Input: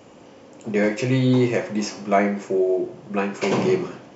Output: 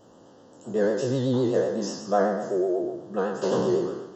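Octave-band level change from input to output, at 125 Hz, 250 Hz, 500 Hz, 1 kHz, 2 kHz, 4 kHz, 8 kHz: −7.0 dB, −5.5 dB, −2.0 dB, −3.0 dB, −9.5 dB, −5.5 dB, can't be measured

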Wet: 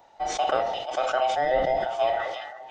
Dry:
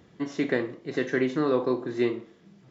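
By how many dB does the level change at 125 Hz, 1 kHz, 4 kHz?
−9.0, +14.5, +8.5 decibels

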